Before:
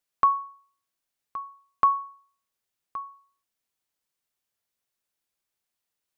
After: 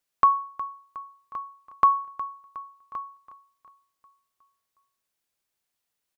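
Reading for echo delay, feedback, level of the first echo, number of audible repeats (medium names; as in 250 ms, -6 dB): 363 ms, 52%, -15.0 dB, 4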